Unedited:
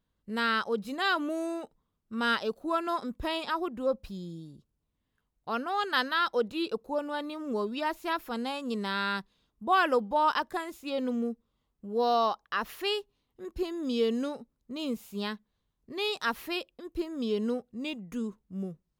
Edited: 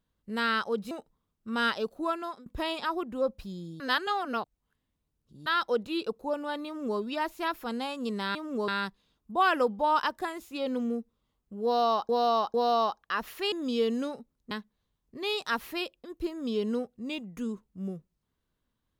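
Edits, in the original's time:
0.91–1.56 cut
2.69–3.11 fade out, to -21.5 dB
4.45–6.11 reverse
7.31–7.64 copy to 9
11.96–12.41 loop, 3 plays
12.94–13.73 cut
14.72–15.26 cut

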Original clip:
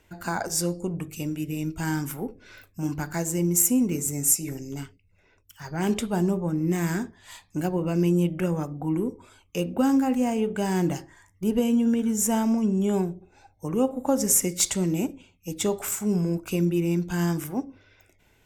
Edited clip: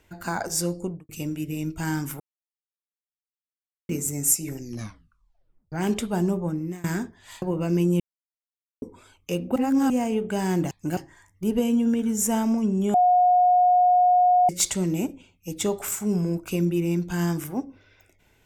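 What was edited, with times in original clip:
0.82–1.09 studio fade out
2.2–3.89 mute
4.59 tape stop 1.13 s
6.47–6.84 fade out, to -24 dB
7.42–7.68 move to 10.97
8.26–9.08 mute
9.82–10.16 reverse
12.94–14.49 bleep 722 Hz -14.5 dBFS

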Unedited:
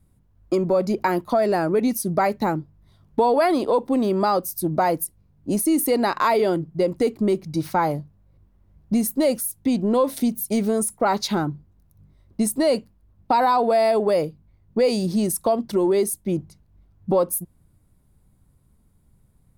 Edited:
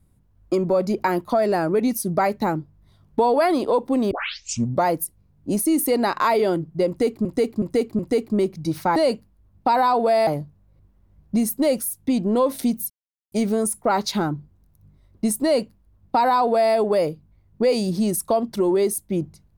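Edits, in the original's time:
4.11 tape start 0.74 s
6.88–7.25 loop, 4 plays
10.48 insert silence 0.42 s
12.6–13.91 copy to 7.85

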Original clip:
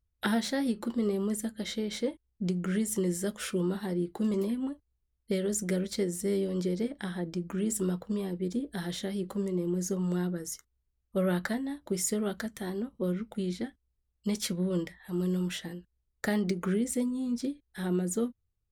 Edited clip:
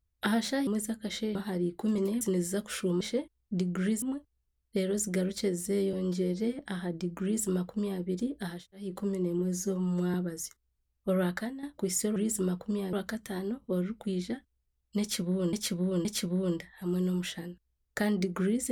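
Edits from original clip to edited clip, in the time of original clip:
0.67–1.22 cut
1.9–2.91 swap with 3.71–4.57
6.48–6.92 stretch 1.5×
7.57–8.34 copy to 12.24
8.88–9.17 room tone, crossfade 0.24 s
9.72–10.22 stretch 1.5×
11.16–11.71 fade out equal-power, to -9.5 dB
14.32–14.84 loop, 3 plays

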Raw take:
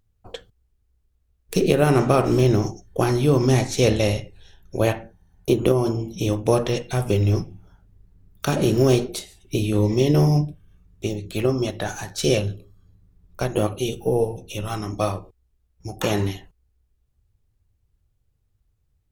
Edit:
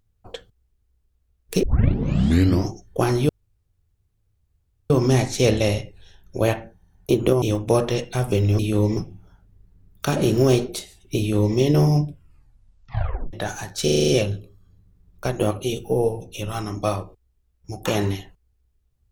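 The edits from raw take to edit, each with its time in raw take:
1.63 tape start 1.08 s
3.29 insert room tone 1.61 s
5.81–6.2 cut
9.59–9.97 copy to 7.37
10.47 tape stop 1.26 s
12.24 stutter 0.04 s, 7 plays

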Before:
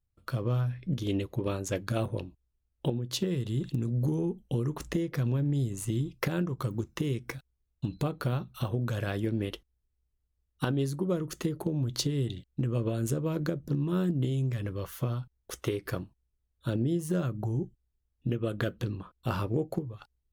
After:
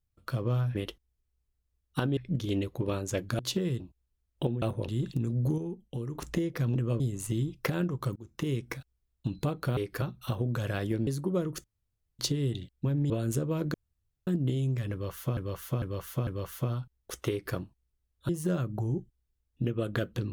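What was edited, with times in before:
1.97–2.23 swap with 3.05–3.46
4.16–4.73 gain -6 dB
5.33–5.58 swap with 12.6–12.85
6.74–7.06 fade in
9.4–10.82 move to 0.75
11.39–11.94 room tone
13.49–14.02 room tone
14.67–15.12 loop, 4 plays
15.7–15.95 copy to 8.35
16.69–16.94 cut

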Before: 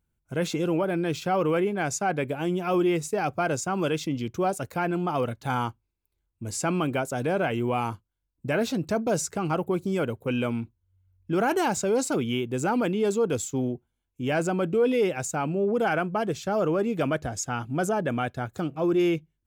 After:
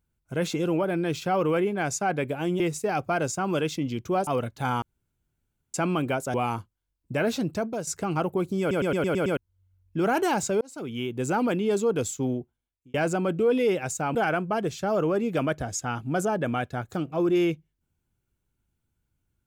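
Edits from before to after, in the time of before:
2.6–2.89 cut
4.56–5.12 cut
5.67–6.59 room tone
7.19–7.68 cut
8.81–9.21 fade out, to -10.5 dB
9.94 stutter in place 0.11 s, 7 plays
11.95–12.56 fade in
13.65–14.28 fade out linear
15.49–15.79 cut

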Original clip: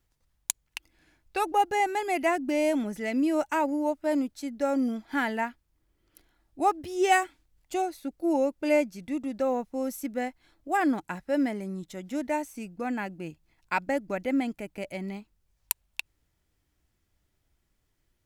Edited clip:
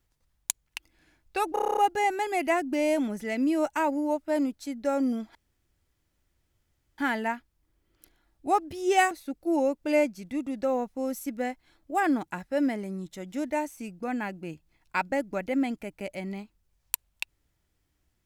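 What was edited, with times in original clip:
1.53 stutter 0.03 s, 9 plays
5.11 insert room tone 1.63 s
7.24–7.88 cut

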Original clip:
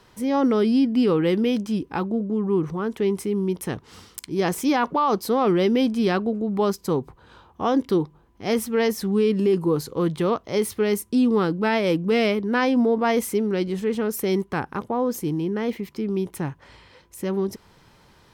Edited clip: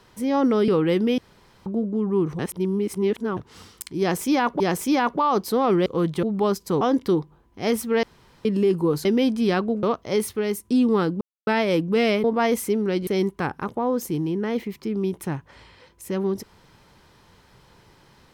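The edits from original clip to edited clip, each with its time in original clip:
0.68–1.05 cut
1.55–2.03 room tone
2.76–3.74 reverse
4.37–4.97 loop, 2 plays
5.63–6.41 swap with 9.88–10.25
6.99–7.64 cut
8.86–9.28 room tone
10.75–11.07 gain -3 dB
11.63 insert silence 0.26 s
12.4–12.89 cut
13.72–14.2 cut

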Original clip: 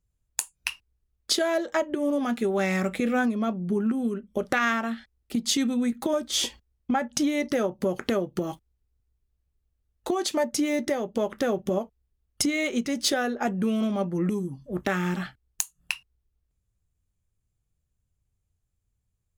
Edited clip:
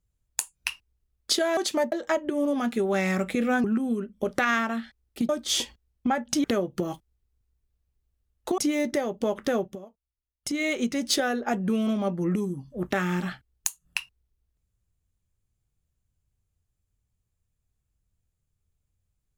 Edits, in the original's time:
3.29–3.78 cut
5.43–6.13 cut
7.28–8.03 cut
10.17–10.52 move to 1.57
11.52–12.56 dip -18 dB, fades 0.21 s

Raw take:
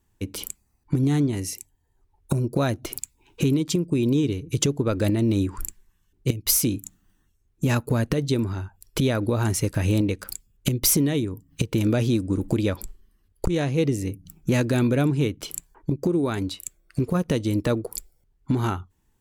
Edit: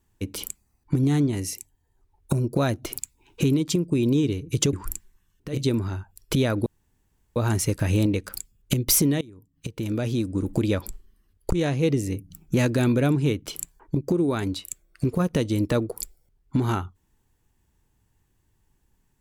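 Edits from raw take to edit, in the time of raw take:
4.73–5.46 cut
6.27–8.19 cut, crossfade 0.24 s
9.31 insert room tone 0.70 s
11.16–12.62 fade in, from -24 dB

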